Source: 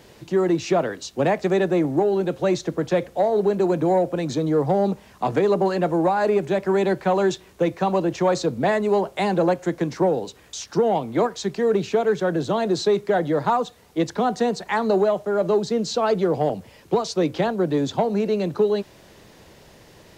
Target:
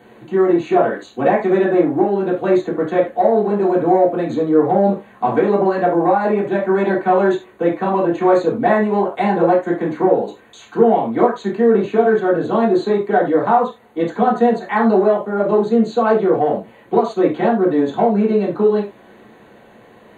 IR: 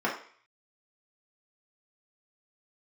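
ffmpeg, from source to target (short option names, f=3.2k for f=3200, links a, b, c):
-filter_complex "[0:a]asuperstop=centerf=5300:order=12:qfactor=3.2[a];[1:a]atrim=start_sample=2205,atrim=end_sample=4410[b];[a][b]afir=irnorm=-1:irlink=0,volume=-6.5dB"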